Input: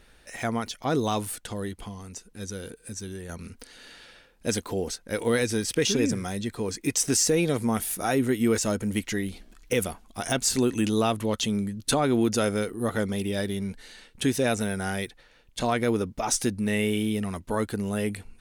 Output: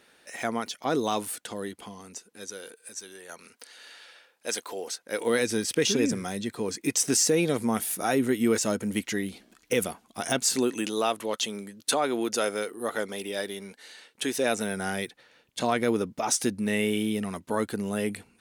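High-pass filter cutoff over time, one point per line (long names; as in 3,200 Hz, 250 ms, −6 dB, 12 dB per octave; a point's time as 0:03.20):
0:02.09 230 Hz
0:02.73 570 Hz
0:04.86 570 Hz
0:05.55 160 Hz
0:10.33 160 Hz
0:10.93 400 Hz
0:14.25 400 Hz
0:14.83 160 Hz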